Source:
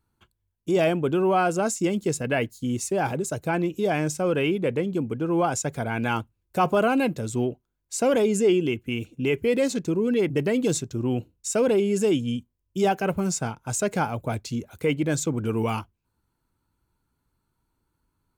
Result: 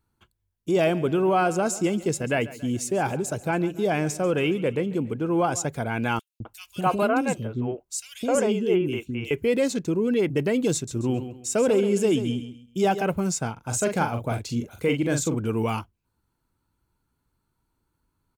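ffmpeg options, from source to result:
-filter_complex "[0:a]asplit=3[a][b][c];[a]afade=t=out:st=0.84:d=0.02[d];[b]aecho=1:1:140|280|420|560:0.126|0.0642|0.0327|0.0167,afade=t=in:st=0.84:d=0.02,afade=t=out:st=5.66:d=0.02[e];[c]afade=t=in:st=5.66:d=0.02[f];[d][e][f]amix=inputs=3:normalize=0,asettb=1/sr,asplit=3[g][h][i];[g]atrim=end=6.194[j];[h]atrim=start=6.19:end=9.31,asetpts=PTS-STARTPTS,afade=t=in:d=0.004:c=qsin,afade=t=out:st=3.116:d=0.004:c=qsin,acrossover=split=370|2700[k][l][m];[k]adelay=210[n];[l]adelay=260[o];[n][o][m]amix=inputs=3:normalize=0,atrim=end_sample=137592[p];[i]atrim=start=9.306[q];[j][p]acrossfade=d=0.004:c1=hsin:c2=qsin[r];[r][q]acrossfade=d=0.004:c1=qsin:c2=hsin,asettb=1/sr,asplit=3[s][t][u];[s]atrim=end=10.744[v];[t]atrim=start=10.74:end=13.03,asetpts=PTS-STARTPTS,afade=t=in:d=0.004:c=qsin,afade=t=out:st=2.286:d=0.004:c=qsin,aecho=1:1:133|266|399:0.299|0.0866|0.0251,atrim=end_sample=100989[w];[u]atrim=start=13.026[x];[v][w]acrossfade=d=0.004:c1=hsin:c2=qsin[y];[y][x]acrossfade=d=0.004:c1=qsin:c2=hsin,asplit=3[z][aa][ab];[z]afade=t=out:st=13.56:d=0.02[ac];[aa]asplit=2[ad][ae];[ae]adelay=42,volume=-6dB[af];[ad][af]amix=inputs=2:normalize=0,afade=t=in:st=13.56:d=0.02,afade=t=out:st=15.36:d=0.02[ag];[ab]afade=t=in:st=15.36:d=0.02[ah];[ac][ag][ah]amix=inputs=3:normalize=0"

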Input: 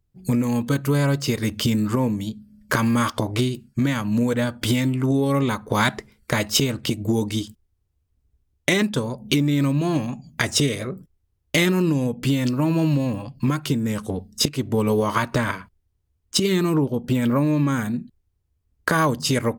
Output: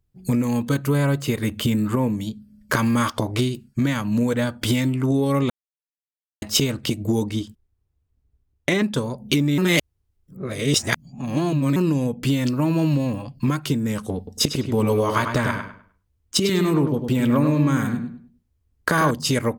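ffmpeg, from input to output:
-filter_complex "[0:a]asettb=1/sr,asplit=3[a][b][c];[a]atrim=end=0.894[d];[b]atrim=start=0.89:end=2.14,asetpts=PTS-STARTPTS,afade=t=in:d=0.004:c=qsin,afade=t=out:st=1.246:d=0.004:c=qsin,equalizer=f=5.3k:t=o:w=0.52:g=-10.5[e];[c]atrim=start=2.136[f];[d][e]acrossfade=d=0.004:c1=hsin:c2=qsin[g];[g][f]acrossfade=d=0.004:c1=qsin:c2=hsin,asettb=1/sr,asplit=3[h][i][j];[h]atrim=end=7.234[k];[i]atrim=start=7.23:end=8.9,asetpts=PTS-STARTPTS,afade=t=in:d=0.004:c=qsin,afade=t=out:st=1.666:d=0.004:c=qsin,highshelf=f=3.3k:g=-8.5[l];[j]atrim=start=8.896[m];[k][l]acrossfade=d=0.004:c1=hsin:c2=qsin[n];[n][m]acrossfade=d=0.004:c1=qsin:c2=hsin,asettb=1/sr,asplit=3[o][p][q];[o]atrim=end=14.174[r];[p]atrim=start=14.17:end=19.11,asetpts=PTS-STARTPTS,afade=t=in:d=0.004:c=qsin,afade=t=out:st=4.936:d=0.004:c=qsin,asplit=2[s][t];[t]adelay=101,lowpass=f=3.3k:p=1,volume=-6dB,asplit=2[u][v];[v]adelay=101,lowpass=f=3.3k:p=1,volume=0.29,asplit=2[w][x];[x]adelay=101,lowpass=f=3.3k:p=1,volume=0.29,asplit=2[y][z];[z]adelay=101,lowpass=f=3.3k:p=1,volume=0.29[aa];[s][u][w][y][aa]amix=inputs=5:normalize=0,atrim=end_sample=217854[ab];[q]atrim=start=19.106[ac];[r][ab]acrossfade=d=0.004:c1=hsin:c2=qsin[ad];[ad][ac]acrossfade=d=0.004:c1=qsin:c2=hsin,asplit=5[ae][af][ag][ah][ai];[ae]atrim=end=5.5,asetpts=PTS-STARTPTS,afade=t=out:st=5.496:d=0.004:c=hsin[aj];[af]atrim=start=5.5:end=6.42,asetpts=PTS-STARTPTS,volume=0[ak];[ag]atrim=start=6.42:end=9.582,asetpts=PTS-STARTPTS,afade=t=in:d=0.004:c=hsin[al];[ah]atrim=start=9.578:end=11.762,asetpts=PTS-STARTPTS,areverse[am];[ai]atrim=start=11.758[an];[aj][ak][al]concat=n=3:v=0:a=1[ao];[ao][am]acrossfade=d=0.004:c1=hsin:c2=hsin[ap];[ap][an]acrossfade=d=0.004:c1=hsin:c2=hsin"

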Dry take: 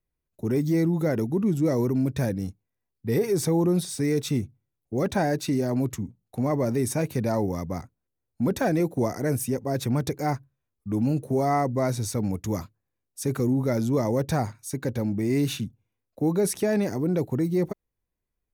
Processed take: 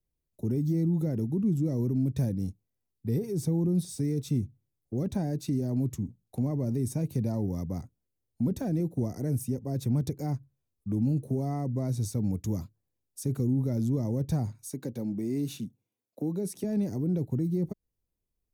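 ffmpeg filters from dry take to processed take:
-filter_complex "[0:a]asettb=1/sr,asplit=3[a][b][c];[a]atrim=end=14.704[d];[b]atrim=start=14.7:end=16.64,asetpts=PTS-STARTPTS,afade=t=in:d=0.004:c=qsin,afade=t=out:st=1.936:d=0.004:c=qsin,highpass=200[e];[c]atrim=start=16.636[f];[d][e]acrossfade=d=0.004:c1=hsin:c2=qsin[g];[g][f]acrossfade=d=0.004:c1=qsin:c2=hsin,equalizer=f=1.6k:t=o:w=2:g=-10.5,acrossover=split=260[h][i];[i]acompressor=threshold=-40dB:ratio=3[j];[h][j]amix=inputs=2:normalize=0"

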